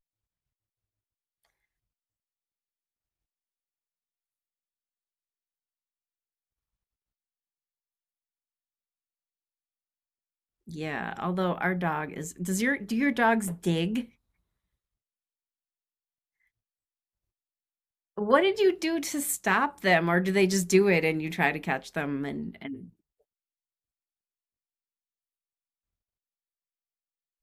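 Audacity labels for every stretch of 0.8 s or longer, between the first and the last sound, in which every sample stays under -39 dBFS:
14.050000	18.180000	silence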